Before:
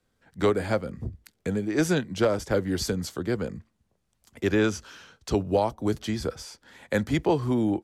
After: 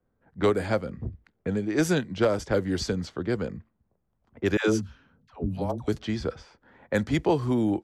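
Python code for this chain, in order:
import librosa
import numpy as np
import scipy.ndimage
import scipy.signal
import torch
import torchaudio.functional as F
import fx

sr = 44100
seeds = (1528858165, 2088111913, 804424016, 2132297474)

y = fx.dispersion(x, sr, late='lows', ms=122.0, hz=490.0, at=(4.57, 5.88))
y = fx.env_lowpass(y, sr, base_hz=1100.0, full_db=-20.0)
y = fx.spec_box(y, sr, start_s=4.81, length_s=0.88, low_hz=290.0, high_hz=10000.0, gain_db=-11)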